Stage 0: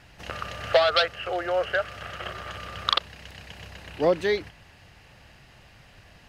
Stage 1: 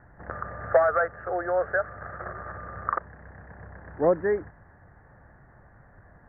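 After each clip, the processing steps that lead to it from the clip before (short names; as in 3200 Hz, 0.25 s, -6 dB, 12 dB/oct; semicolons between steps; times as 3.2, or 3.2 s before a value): steep low-pass 1800 Hz 72 dB/oct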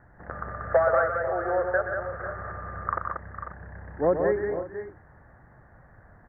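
tapped delay 0.124/0.185/0.456/0.497/0.539 s -7.5/-5/-18.5/-11.5/-16.5 dB; gain -1.5 dB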